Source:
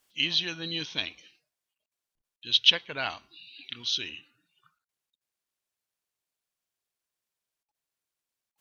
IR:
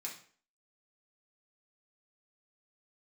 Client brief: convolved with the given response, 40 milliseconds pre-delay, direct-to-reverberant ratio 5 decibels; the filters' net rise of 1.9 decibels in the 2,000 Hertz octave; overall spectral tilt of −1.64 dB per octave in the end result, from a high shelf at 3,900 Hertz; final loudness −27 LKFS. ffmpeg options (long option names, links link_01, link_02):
-filter_complex "[0:a]equalizer=frequency=2000:width_type=o:gain=4,highshelf=frequency=3900:gain=-3.5,asplit=2[link_01][link_02];[1:a]atrim=start_sample=2205,adelay=40[link_03];[link_02][link_03]afir=irnorm=-1:irlink=0,volume=-3.5dB[link_04];[link_01][link_04]amix=inputs=2:normalize=0,volume=-1.5dB"